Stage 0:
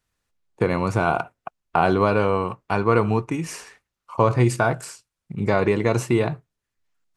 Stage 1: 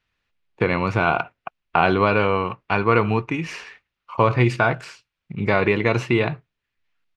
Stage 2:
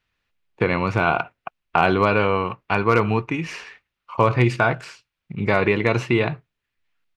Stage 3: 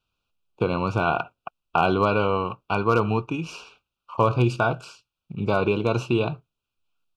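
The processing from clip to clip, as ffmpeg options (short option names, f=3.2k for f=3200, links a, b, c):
-af "firequalizer=gain_entry='entry(670,0);entry(2500,9);entry(8400,-16)':delay=0.05:min_phase=1"
-af "asoftclip=type=hard:threshold=-4.5dB"
-af "asuperstop=centerf=1900:order=8:qfactor=2,volume=-2.5dB"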